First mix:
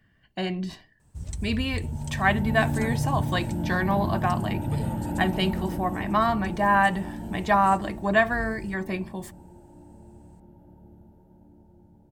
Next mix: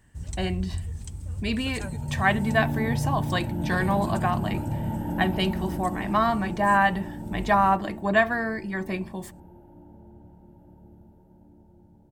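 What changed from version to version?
first sound: entry -1.00 s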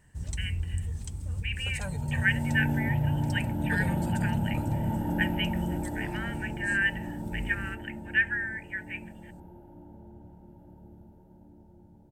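speech: add Chebyshev band-pass 1500–3000 Hz, order 4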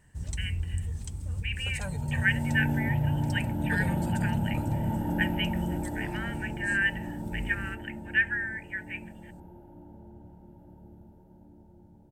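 none

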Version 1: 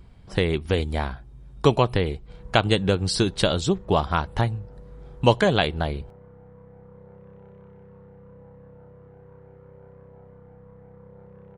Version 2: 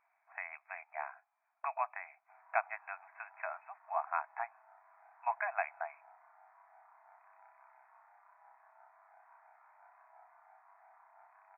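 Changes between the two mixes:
speech -10.0 dB; master: add brick-wall FIR band-pass 630–2600 Hz

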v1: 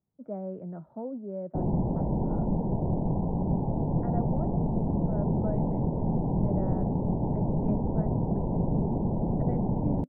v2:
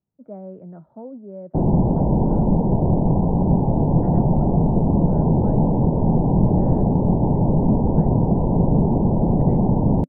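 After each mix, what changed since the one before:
background +10.0 dB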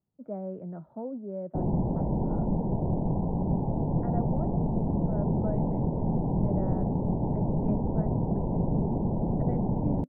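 background -10.0 dB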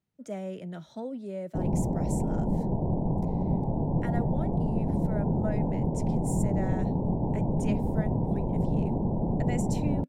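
speech: remove LPF 1100 Hz 24 dB/oct

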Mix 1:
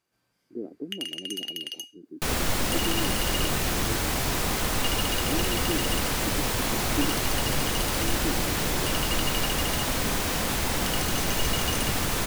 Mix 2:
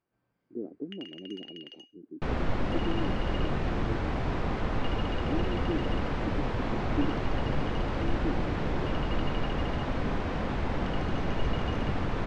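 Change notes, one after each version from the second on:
master: add tape spacing loss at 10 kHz 43 dB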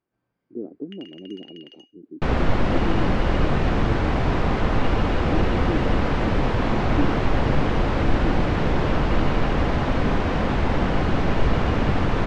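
speech +4.5 dB; second sound +9.0 dB

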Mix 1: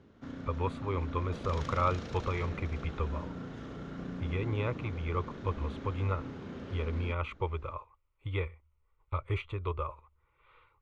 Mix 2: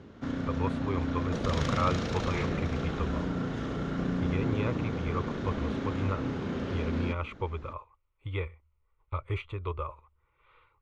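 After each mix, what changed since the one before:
background +9.5 dB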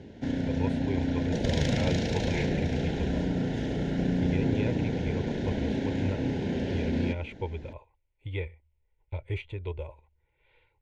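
background +3.5 dB; master: add Butterworth band-stop 1200 Hz, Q 1.7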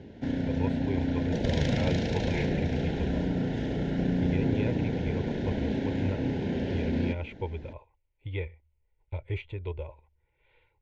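master: add air absorption 77 m

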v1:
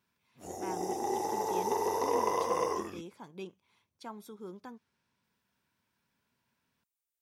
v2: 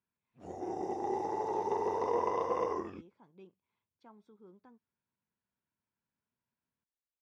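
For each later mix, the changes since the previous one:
speech -11.0 dB; master: add tape spacing loss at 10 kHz 26 dB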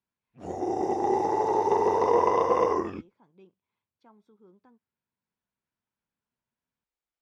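background +9.5 dB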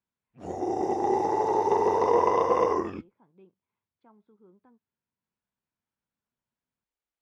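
speech: add air absorption 360 m

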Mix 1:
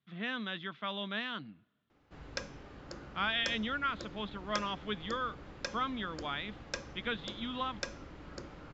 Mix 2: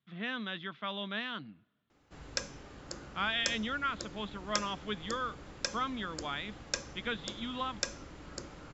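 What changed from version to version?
background: remove air absorption 140 m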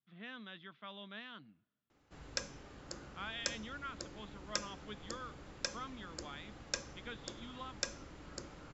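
speech -11.5 dB; background -3.5 dB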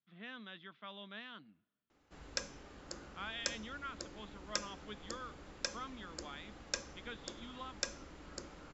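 master: add bell 120 Hz -8 dB 0.57 oct

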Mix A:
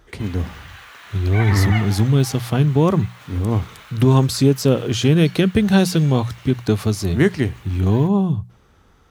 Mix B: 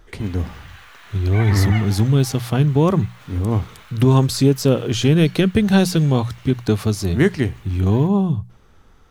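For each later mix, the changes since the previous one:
background -3.0 dB; master: remove HPF 42 Hz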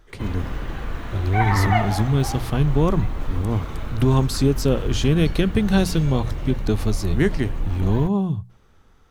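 speech -4.0 dB; background: remove Bessel high-pass 1900 Hz, order 2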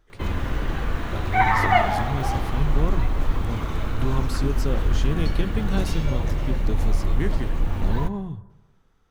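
speech -10.5 dB; reverb: on, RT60 1.1 s

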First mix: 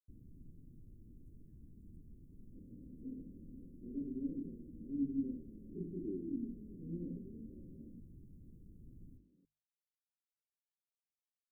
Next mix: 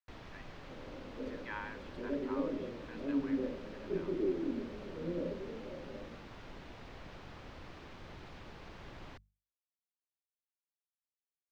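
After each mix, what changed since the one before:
first sound +3.5 dB; second sound: entry -1.85 s; master: remove inverse Chebyshev band-stop 810–4200 Hz, stop band 60 dB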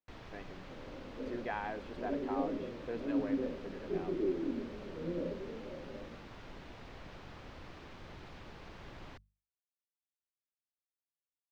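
speech: remove Chebyshev high-pass 950 Hz, order 5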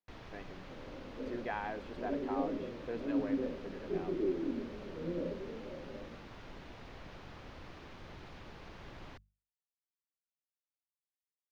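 first sound: add notch 7700 Hz, Q 14

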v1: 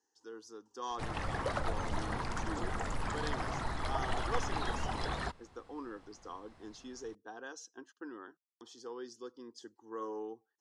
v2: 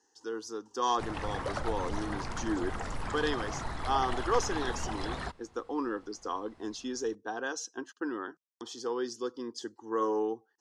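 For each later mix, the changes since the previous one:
speech +11.0 dB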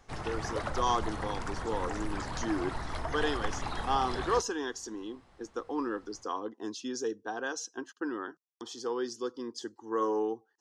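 background: entry -0.90 s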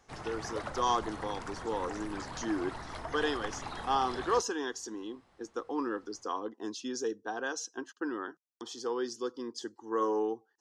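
background -3.5 dB; master: add low shelf 74 Hz -9.5 dB

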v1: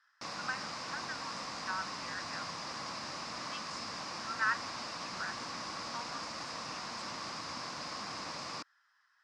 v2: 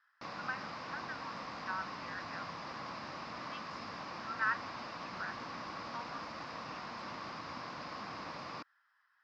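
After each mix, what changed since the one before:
master: add air absorption 230 m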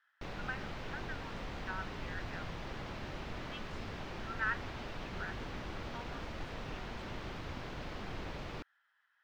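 master: remove speaker cabinet 200–6400 Hz, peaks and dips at 400 Hz -10 dB, 1100 Hz +10 dB, 3200 Hz -6 dB, 5000 Hz +10 dB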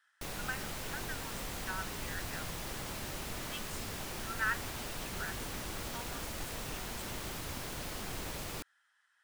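master: remove air absorption 230 m

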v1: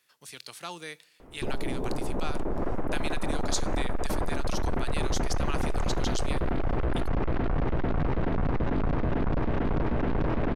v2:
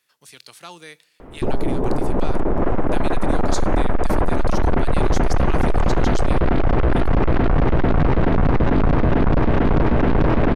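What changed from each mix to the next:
background +10.5 dB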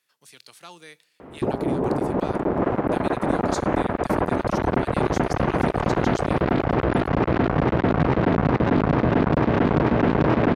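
speech -4.5 dB; master: add HPF 110 Hz 12 dB/oct

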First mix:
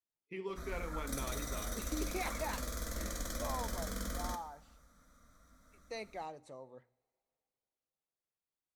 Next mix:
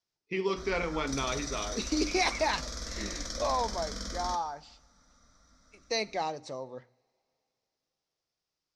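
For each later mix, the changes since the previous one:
speech +11.0 dB; master: add synth low-pass 5300 Hz, resonance Q 4.2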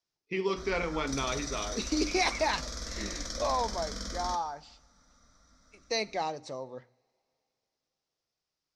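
none

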